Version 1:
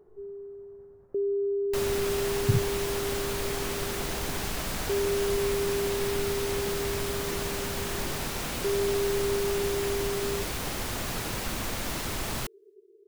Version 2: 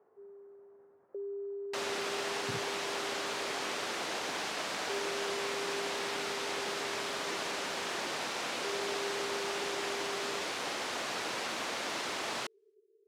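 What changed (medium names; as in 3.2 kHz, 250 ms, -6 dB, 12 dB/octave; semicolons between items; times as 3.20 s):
first sound: add band-pass filter 540 Hz, Q 4.2; master: add band-pass 400–5900 Hz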